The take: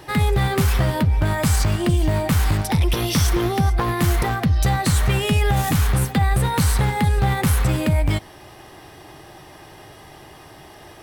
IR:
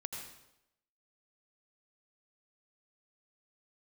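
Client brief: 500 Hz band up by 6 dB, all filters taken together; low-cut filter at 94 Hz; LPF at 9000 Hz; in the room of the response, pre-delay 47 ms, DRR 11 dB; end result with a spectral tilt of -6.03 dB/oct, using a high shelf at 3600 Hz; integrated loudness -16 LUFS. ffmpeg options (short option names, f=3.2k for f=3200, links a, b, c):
-filter_complex "[0:a]highpass=94,lowpass=9k,equalizer=f=500:t=o:g=8.5,highshelf=f=3.6k:g=-6,asplit=2[a][b];[1:a]atrim=start_sample=2205,adelay=47[c];[b][c]afir=irnorm=-1:irlink=0,volume=-10dB[d];[a][d]amix=inputs=2:normalize=0,volume=4dB"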